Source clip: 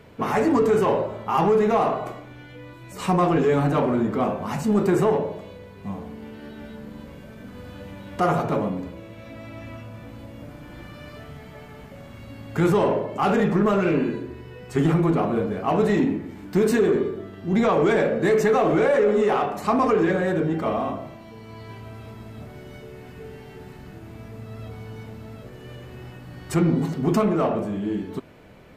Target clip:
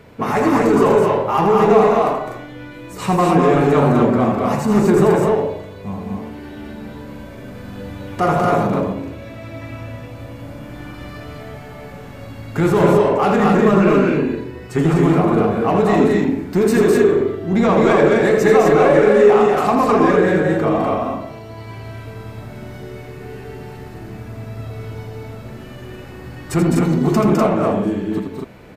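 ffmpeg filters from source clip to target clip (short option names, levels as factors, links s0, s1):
-filter_complex "[0:a]equalizer=f=3100:t=o:w=0.21:g=-3.5,asplit=2[s0][s1];[s1]volume=7.94,asoftclip=hard,volume=0.126,volume=0.266[s2];[s0][s2]amix=inputs=2:normalize=0,aecho=1:1:81.63|207|247.8:0.447|0.631|0.708,volume=1.26"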